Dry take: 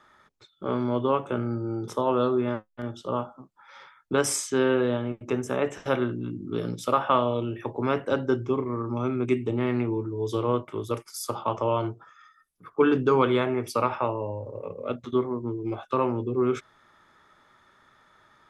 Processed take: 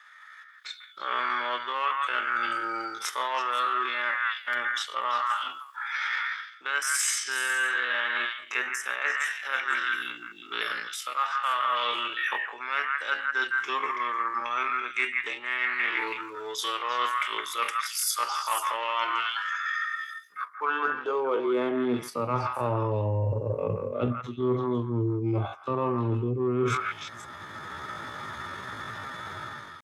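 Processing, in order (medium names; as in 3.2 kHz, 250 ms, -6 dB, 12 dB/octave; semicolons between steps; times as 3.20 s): in parallel at -9.5 dB: saturation -24.5 dBFS, distortion -8 dB; on the sum: high-pass sweep 1.8 kHz -> 97 Hz, 12.56–13.96 s; level rider gain up to 16.5 dB; dynamic bell 5.4 kHz, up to -3 dB, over -38 dBFS, Q 1; repeats whose band climbs or falls 102 ms, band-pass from 1.5 kHz, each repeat 1.4 oct, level -2 dB; reverse; compression 8:1, threshold -26 dBFS, peak gain reduction 18.5 dB; reverse; tempo 0.62×; trim +1.5 dB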